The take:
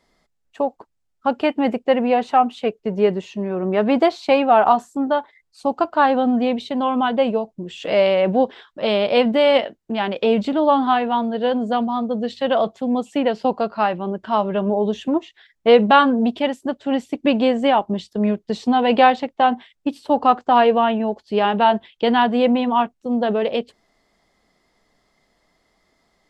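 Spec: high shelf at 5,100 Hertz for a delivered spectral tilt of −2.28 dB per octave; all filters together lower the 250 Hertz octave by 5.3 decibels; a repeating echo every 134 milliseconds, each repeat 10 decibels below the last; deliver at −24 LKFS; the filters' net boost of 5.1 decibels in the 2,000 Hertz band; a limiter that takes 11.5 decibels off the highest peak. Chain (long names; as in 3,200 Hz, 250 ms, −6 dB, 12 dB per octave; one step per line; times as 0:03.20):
parametric band 250 Hz −6 dB
parametric band 2,000 Hz +7.5 dB
high-shelf EQ 5,100 Hz −3.5 dB
brickwall limiter −10 dBFS
repeating echo 134 ms, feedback 32%, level −10 dB
level −2 dB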